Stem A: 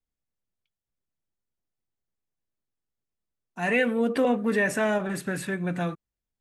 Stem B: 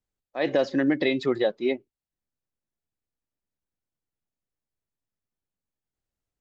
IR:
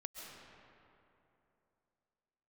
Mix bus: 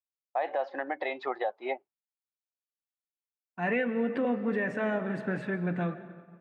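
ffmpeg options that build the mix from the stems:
-filter_complex "[0:a]adynamicequalizer=threshold=0.0112:dfrequency=790:dqfactor=0.97:tfrequency=790:tqfactor=0.97:attack=5:release=100:ratio=0.375:range=2:mode=cutabove:tftype=bell,volume=-4dB,asplit=2[link_01][link_02];[link_02]volume=-4.5dB[link_03];[1:a]highpass=frequency=780:width_type=q:width=4.9,volume=0dB[link_04];[2:a]atrim=start_sample=2205[link_05];[link_03][link_05]afir=irnorm=-1:irlink=0[link_06];[link_01][link_04][link_06]amix=inputs=3:normalize=0,agate=range=-33dB:threshold=-41dB:ratio=3:detection=peak,highpass=100,lowpass=2100,alimiter=limit=-20dB:level=0:latency=1:release=260"

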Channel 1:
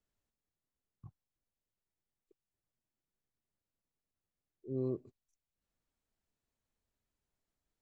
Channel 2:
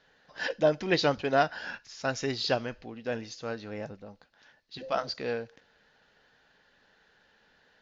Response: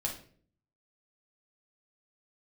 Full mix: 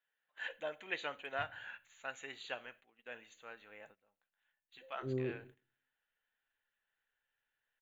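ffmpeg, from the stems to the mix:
-filter_complex "[0:a]adelay=350,volume=-6dB,asplit=2[link_01][link_02];[link_02]volume=-6.5dB[link_03];[1:a]aderivative,volume=2.5dB,asplit=2[link_04][link_05];[link_05]volume=-15.5dB[link_06];[2:a]atrim=start_sample=2205[link_07];[link_03][link_06]amix=inputs=2:normalize=0[link_08];[link_08][link_07]afir=irnorm=-1:irlink=0[link_09];[link_01][link_04][link_09]amix=inputs=3:normalize=0,agate=range=-13dB:threshold=-58dB:ratio=16:detection=peak,asuperstop=centerf=5200:order=4:qfactor=0.81"

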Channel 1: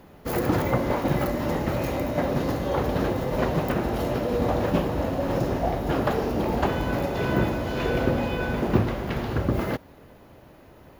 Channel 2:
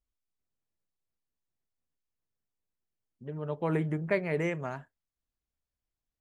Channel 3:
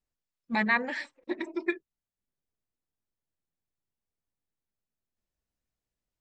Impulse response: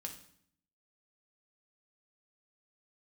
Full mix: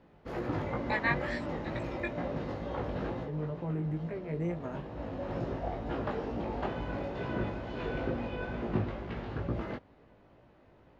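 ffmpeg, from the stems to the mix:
-filter_complex "[0:a]lowpass=3700,volume=-7.5dB[link_01];[1:a]tiltshelf=frequency=970:gain=4,acrossover=split=380[link_02][link_03];[link_03]acompressor=threshold=-37dB:ratio=6[link_04];[link_02][link_04]amix=inputs=2:normalize=0,alimiter=level_in=1.5dB:limit=-24dB:level=0:latency=1:release=296,volume=-1.5dB,volume=1dB,asplit=2[link_05][link_06];[2:a]highpass=520,adelay=350,volume=-1.5dB[link_07];[link_06]apad=whole_len=484702[link_08];[link_01][link_08]sidechaincompress=threshold=-40dB:ratio=8:attack=12:release=677[link_09];[link_09][link_05][link_07]amix=inputs=3:normalize=0,flanger=delay=17:depth=3.1:speed=2.2"

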